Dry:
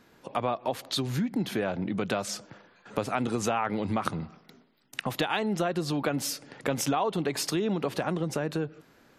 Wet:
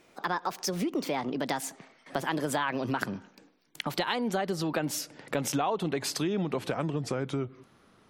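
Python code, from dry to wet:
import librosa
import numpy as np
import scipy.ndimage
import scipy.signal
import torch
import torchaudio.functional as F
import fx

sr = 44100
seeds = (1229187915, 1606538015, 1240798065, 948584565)

y = fx.speed_glide(x, sr, from_pct=147, to_pct=80)
y = y * 10.0 ** (-1.5 / 20.0)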